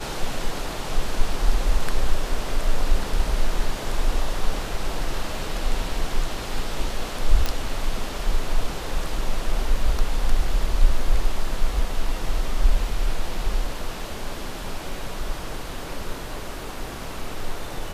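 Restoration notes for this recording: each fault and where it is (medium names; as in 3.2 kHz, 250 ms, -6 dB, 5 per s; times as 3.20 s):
7.46 s: pop -9 dBFS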